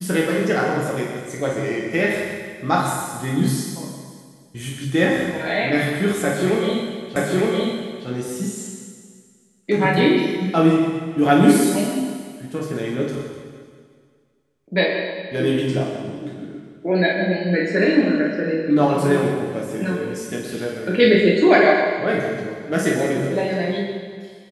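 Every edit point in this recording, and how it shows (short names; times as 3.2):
7.16 repeat of the last 0.91 s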